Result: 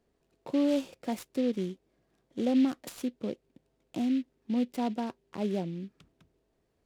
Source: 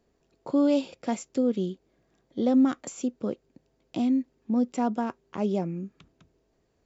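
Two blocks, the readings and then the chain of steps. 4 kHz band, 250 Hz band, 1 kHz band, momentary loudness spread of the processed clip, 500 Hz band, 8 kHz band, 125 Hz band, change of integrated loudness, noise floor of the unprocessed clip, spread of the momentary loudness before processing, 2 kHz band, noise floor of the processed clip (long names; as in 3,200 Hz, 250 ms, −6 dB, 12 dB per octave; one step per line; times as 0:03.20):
0.0 dB, −4.0 dB, −6.0 dB, 15 LU, −4.5 dB, can't be measured, −4.0 dB, −4.0 dB, −72 dBFS, 15 LU, −2.5 dB, −76 dBFS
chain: dynamic equaliser 1,300 Hz, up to −7 dB, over −50 dBFS, Q 2
short delay modulated by noise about 2,700 Hz, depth 0.033 ms
level −4 dB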